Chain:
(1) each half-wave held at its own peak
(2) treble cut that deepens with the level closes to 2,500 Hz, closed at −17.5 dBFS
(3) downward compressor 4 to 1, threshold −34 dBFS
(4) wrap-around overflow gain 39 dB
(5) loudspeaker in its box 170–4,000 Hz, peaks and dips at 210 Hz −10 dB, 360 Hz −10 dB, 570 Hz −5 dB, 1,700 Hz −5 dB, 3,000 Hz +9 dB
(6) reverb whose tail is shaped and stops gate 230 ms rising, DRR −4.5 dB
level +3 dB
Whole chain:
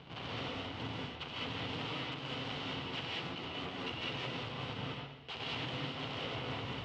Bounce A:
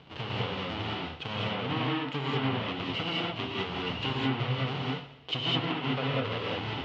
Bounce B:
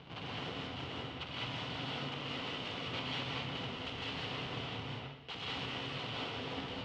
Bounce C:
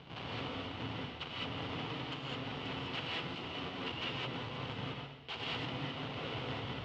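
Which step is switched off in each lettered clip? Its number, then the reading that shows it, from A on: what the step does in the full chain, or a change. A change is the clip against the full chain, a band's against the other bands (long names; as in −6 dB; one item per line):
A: 4, change in crest factor +1.5 dB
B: 3, average gain reduction 8.0 dB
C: 2, 8 kHz band −3.0 dB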